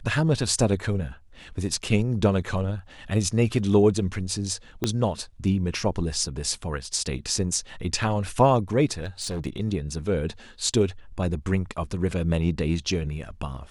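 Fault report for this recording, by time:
4.84 s: pop -10 dBFS
9.02–9.47 s: clipped -26 dBFS

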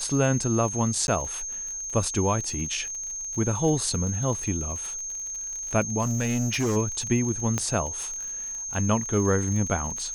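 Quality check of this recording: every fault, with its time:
crackle 41 per s -32 dBFS
whine 6.4 kHz -31 dBFS
1.07–1.08 s: dropout
6.01–6.77 s: clipped -21.5 dBFS
7.58 s: pop -12 dBFS

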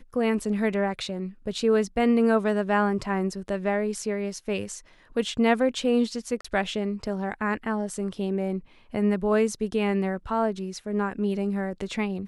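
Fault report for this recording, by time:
6.41–6.45 s: dropout 35 ms

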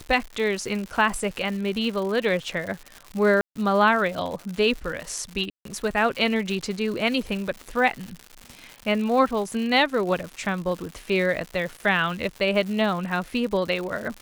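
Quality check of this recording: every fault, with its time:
crackle 210 per s -31 dBFS
3.41–3.56 s: dropout 145 ms
5.50–5.65 s: dropout 153 ms

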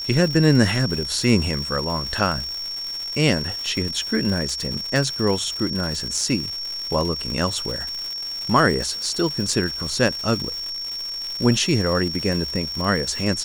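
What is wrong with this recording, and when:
crackle 290 per s -27 dBFS
whine 5.5 kHz -27 dBFS

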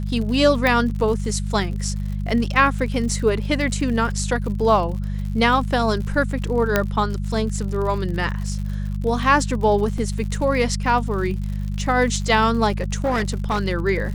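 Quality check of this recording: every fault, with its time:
crackle 83 per s -30 dBFS
hum 50 Hz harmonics 4 -25 dBFS
0.67 s: pop -7 dBFS
6.76 s: pop -3 dBFS
9.98 s: dropout 2.4 ms
13.04–13.60 s: clipped -16.5 dBFS

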